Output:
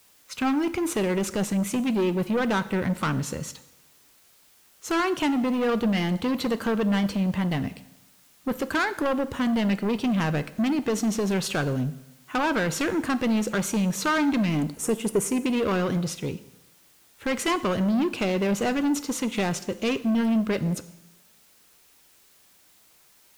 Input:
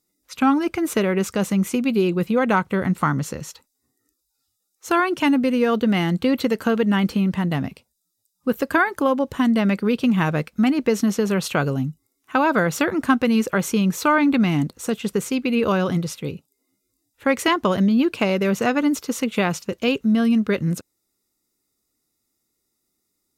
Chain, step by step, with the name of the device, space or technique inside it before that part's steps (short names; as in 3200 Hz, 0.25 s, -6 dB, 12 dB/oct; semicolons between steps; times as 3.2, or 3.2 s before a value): compact cassette (soft clip -20.5 dBFS, distortion -10 dB; LPF 12000 Hz; wow and flutter; white noise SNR 32 dB); 14.74–15.46 fifteen-band EQ 400 Hz +6 dB, 4000 Hz -8 dB, 10000 Hz +9 dB; two-slope reverb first 0.89 s, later 2.4 s, from -27 dB, DRR 12.5 dB